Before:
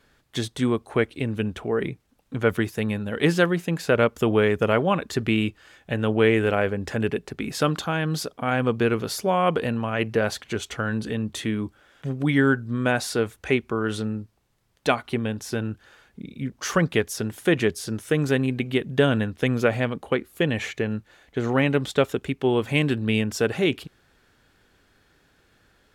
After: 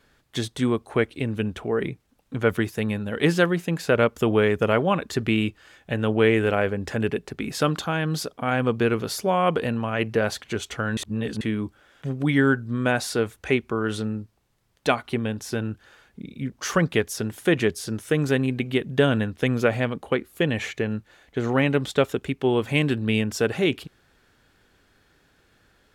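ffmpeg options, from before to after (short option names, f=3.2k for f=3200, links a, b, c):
-filter_complex "[0:a]asplit=3[a][b][c];[a]atrim=end=10.972[d];[b]atrim=start=10.968:end=11.412,asetpts=PTS-STARTPTS,areverse[e];[c]atrim=start=11.408[f];[d][e]acrossfade=d=0.004:c1=hsin:c2=hsin[g];[g][f]acrossfade=d=0.004:c1=hsin:c2=hsin"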